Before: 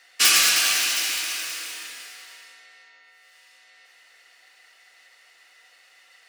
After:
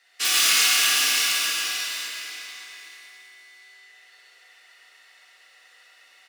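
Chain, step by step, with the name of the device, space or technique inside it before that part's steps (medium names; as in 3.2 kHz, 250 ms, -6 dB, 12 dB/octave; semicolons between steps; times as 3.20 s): PA in a hall (high-pass 180 Hz 12 dB/octave; peaking EQ 3.6 kHz +3 dB 0.31 oct; delay 135 ms -4.5 dB; reverberation RT60 2.1 s, pre-delay 35 ms, DRR 1 dB); 1.47–2.13 s: Chebyshev band-pass 440–6000 Hz, order 2; delay 583 ms -7.5 dB; plate-style reverb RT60 2.4 s, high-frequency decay 0.85×, DRR -4 dB; trim -9 dB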